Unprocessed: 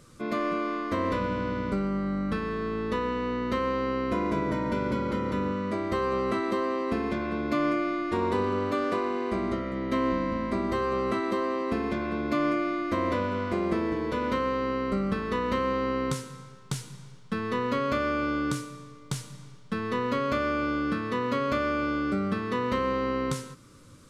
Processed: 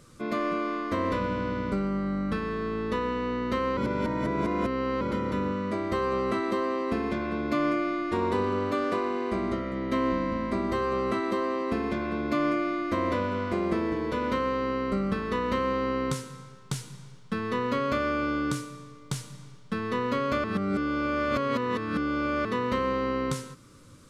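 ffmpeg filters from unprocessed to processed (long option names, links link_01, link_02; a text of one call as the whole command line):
ffmpeg -i in.wav -filter_complex "[0:a]asplit=5[link_01][link_02][link_03][link_04][link_05];[link_01]atrim=end=3.772[link_06];[link_02]atrim=start=3.768:end=5.012,asetpts=PTS-STARTPTS,areverse[link_07];[link_03]atrim=start=5.008:end=20.442[link_08];[link_04]atrim=start=20.438:end=22.452,asetpts=PTS-STARTPTS,areverse[link_09];[link_05]atrim=start=22.448[link_10];[link_06][link_07]acrossfade=duration=0.004:curve1=hsin:curve2=hsin[link_11];[link_11][link_08]acrossfade=duration=0.004:curve1=hsin:curve2=hsin[link_12];[link_12][link_09]acrossfade=duration=0.004:curve1=hsin:curve2=hsin[link_13];[link_13][link_10]acrossfade=duration=0.004:curve1=hsin:curve2=hsin" out.wav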